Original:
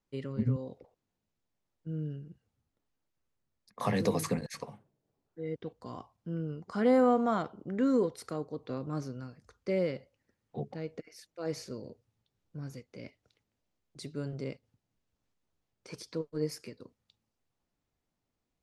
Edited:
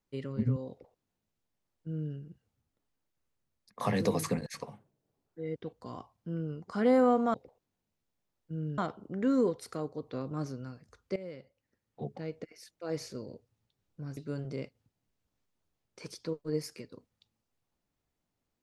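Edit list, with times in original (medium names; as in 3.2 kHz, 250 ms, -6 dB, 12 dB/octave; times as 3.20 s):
0.70–2.14 s: copy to 7.34 s
9.72–10.79 s: fade in, from -17 dB
12.73–14.05 s: delete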